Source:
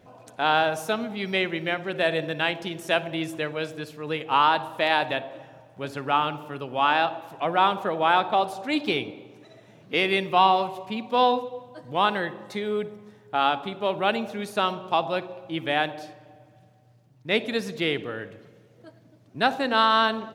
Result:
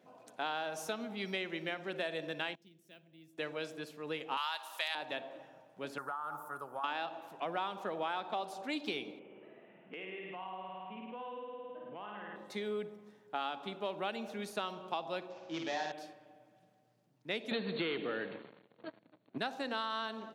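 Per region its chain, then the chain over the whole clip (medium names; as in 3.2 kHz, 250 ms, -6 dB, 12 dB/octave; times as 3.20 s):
2.55–3.38 s: amplifier tone stack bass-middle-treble 10-0-1 + careless resampling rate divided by 2×, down none, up hold
4.37–4.95 s: high-pass 660 Hz + tilt EQ +4 dB/octave
5.98–6.84 s: FFT filter 110 Hz 0 dB, 220 Hz -12 dB, 480 Hz -5 dB, 1.4 kHz +9 dB, 2.7 kHz -23 dB, 10 kHz +14 dB + compression 12:1, threshold -26 dBFS
9.19–12.36 s: Chebyshev band-pass 120–3000 Hz, order 5 + flutter echo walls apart 9.2 m, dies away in 1.2 s + compression 5:1, threshold -35 dBFS
15.30–15.92 s: CVSD coder 32 kbps + flutter echo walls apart 8.8 m, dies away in 0.62 s
17.51–19.38 s: waveshaping leveller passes 3 + brick-wall FIR low-pass 4.5 kHz
whole clip: high-pass 170 Hz 24 dB/octave; dynamic bell 5.8 kHz, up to +6 dB, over -46 dBFS, Q 1.3; compression 5:1, threshold -25 dBFS; trim -8.5 dB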